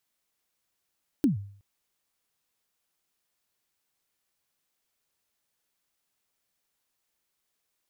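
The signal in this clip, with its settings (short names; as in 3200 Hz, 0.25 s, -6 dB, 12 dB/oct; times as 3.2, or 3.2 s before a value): kick drum length 0.37 s, from 320 Hz, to 100 Hz, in 0.13 s, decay 0.54 s, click on, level -16 dB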